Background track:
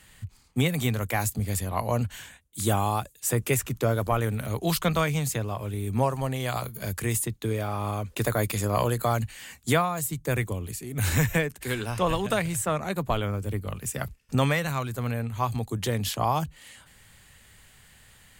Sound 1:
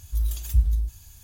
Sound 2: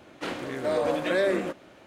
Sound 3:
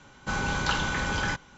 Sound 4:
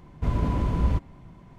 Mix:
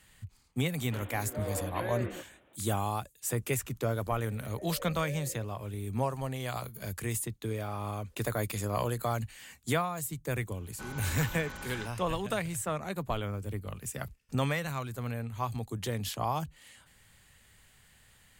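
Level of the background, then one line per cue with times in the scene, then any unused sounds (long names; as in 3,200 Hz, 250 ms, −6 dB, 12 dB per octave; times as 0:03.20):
background track −6.5 dB
0:00.70: mix in 2 −12 dB + downsampling to 8,000 Hz
0:03.93: mix in 2 −13.5 dB + formant resonators in series e
0:10.52: mix in 3 −14.5 dB
not used: 1, 4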